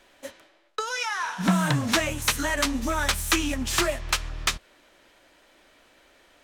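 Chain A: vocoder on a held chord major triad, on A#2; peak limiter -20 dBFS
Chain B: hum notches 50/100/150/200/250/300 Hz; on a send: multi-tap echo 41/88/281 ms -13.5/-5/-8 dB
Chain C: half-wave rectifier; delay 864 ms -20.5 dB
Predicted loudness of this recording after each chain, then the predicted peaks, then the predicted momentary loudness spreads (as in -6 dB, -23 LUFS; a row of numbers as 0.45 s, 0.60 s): -31.5 LUFS, -24.0 LUFS, -30.0 LUFS; -20.0 dBFS, -7.5 dBFS, -8.0 dBFS; 15 LU, 15 LU, 14 LU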